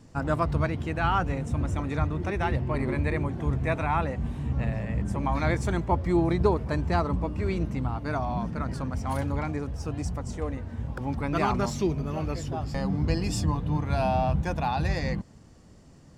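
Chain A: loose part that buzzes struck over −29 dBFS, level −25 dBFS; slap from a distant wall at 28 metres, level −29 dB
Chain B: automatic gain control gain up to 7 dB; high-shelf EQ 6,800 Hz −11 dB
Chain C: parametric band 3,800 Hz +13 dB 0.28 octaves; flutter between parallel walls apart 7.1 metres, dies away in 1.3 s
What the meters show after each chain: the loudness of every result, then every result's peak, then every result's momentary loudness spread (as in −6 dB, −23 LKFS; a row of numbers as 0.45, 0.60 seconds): −28.0, −22.0, −23.5 LKFS; −9.0, −3.5, −6.5 dBFS; 7, 7, 8 LU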